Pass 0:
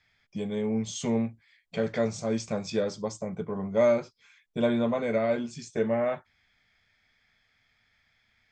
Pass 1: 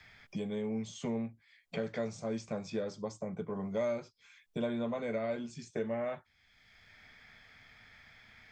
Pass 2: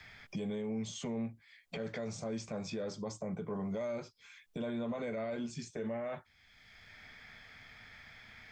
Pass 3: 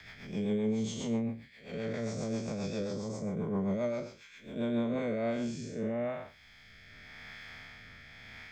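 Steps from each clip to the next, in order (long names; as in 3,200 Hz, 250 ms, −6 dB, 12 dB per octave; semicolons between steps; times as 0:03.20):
multiband upward and downward compressor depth 70%; level −8.5 dB
brickwall limiter −34.5 dBFS, peak gain reduction 11 dB; level +3.5 dB
spectrum smeared in time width 185 ms; rotating-speaker cabinet horn 7.5 Hz, later 0.9 Hz, at 0:04.51; level +9 dB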